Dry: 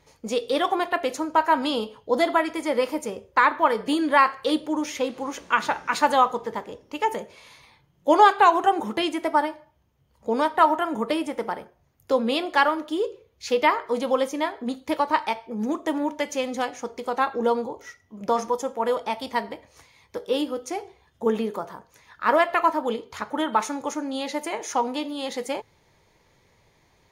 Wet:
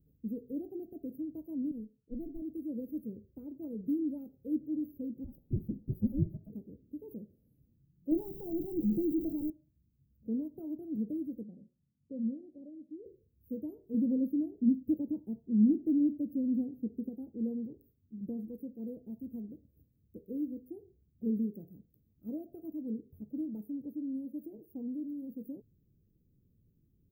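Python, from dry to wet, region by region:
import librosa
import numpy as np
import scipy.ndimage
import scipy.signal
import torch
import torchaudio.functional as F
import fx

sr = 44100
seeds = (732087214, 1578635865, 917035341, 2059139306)

y = fx.chain(x, sr, fx.tube_stage(drive_db=17.0, bias=0.75),
    fx.band_widen(depth_pct=70), at=(1.71, 2.42))
y = fx.chain(y, sr, fx.low_shelf(hz=180.0, db=10.0),
    fx.ring_mod(carrier_hz=1100.0), at=(5.24, 6.5))
y = fx.chain(y, sr, fx.zero_step(step_db=-24.5),
    fx.high_shelf(hz=4300.0, db=-9.5),
    fx.comb(ms=6.0, depth=0.59), at=(8.11, 9.5))
y = fx.chain(y, sr, fx.cheby_ripple(hz=780.0, ripple_db=9),
    fx.low_shelf(hz=88.0, db=-10.0), at=(11.43, 13.06))
y = fx.chain(y, sr, fx.peak_eq(hz=230.0, db=7.5, octaves=2.4),
    fx.doppler_dist(depth_ms=0.13), at=(13.94, 17.09))
y = scipy.signal.sosfilt(scipy.signal.cheby2(4, 70, [1000.0, 7300.0], 'bandstop', fs=sr, output='sos'), y)
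y = fx.low_shelf(y, sr, hz=350.0, db=-11.0)
y = y * 10.0 ** (6.0 / 20.0)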